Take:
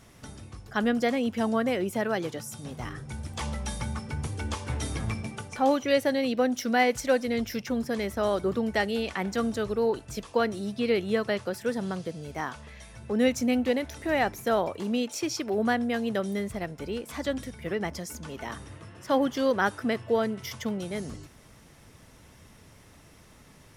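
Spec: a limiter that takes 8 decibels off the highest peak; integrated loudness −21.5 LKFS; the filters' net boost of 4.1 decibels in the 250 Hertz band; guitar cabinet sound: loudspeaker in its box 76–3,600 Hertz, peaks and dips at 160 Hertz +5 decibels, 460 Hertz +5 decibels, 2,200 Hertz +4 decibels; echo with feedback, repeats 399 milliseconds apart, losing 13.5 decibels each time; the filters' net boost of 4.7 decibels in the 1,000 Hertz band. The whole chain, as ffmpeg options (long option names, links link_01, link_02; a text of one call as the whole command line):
ffmpeg -i in.wav -af "equalizer=frequency=250:width_type=o:gain=3.5,equalizer=frequency=1000:width_type=o:gain=6,alimiter=limit=-15dB:level=0:latency=1,highpass=76,equalizer=frequency=160:width_type=q:width=4:gain=5,equalizer=frequency=460:width_type=q:width=4:gain=5,equalizer=frequency=2200:width_type=q:width=4:gain=4,lowpass=frequency=3600:width=0.5412,lowpass=frequency=3600:width=1.3066,aecho=1:1:399|798:0.211|0.0444,volume=4.5dB" out.wav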